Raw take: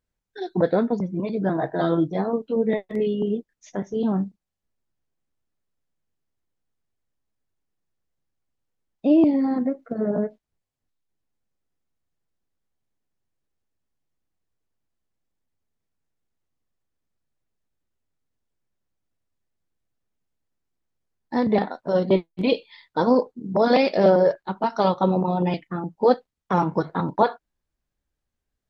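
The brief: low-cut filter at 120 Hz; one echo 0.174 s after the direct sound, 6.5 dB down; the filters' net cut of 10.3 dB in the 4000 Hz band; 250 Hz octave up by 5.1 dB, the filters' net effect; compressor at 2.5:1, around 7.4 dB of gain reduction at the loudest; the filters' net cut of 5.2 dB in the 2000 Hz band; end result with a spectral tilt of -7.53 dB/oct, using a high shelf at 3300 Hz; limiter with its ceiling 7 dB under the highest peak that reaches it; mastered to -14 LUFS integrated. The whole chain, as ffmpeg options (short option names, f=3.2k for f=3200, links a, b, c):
-af "highpass=120,equalizer=f=250:t=o:g=7,equalizer=f=2k:t=o:g=-3.5,highshelf=f=3.3k:g=-7.5,equalizer=f=4k:t=o:g=-6.5,acompressor=threshold=-20dB:ratio=2.5,alimiter=limit=-15dB:level=0:latency=1,aecho=1:1:174:0.473,volume=11dB"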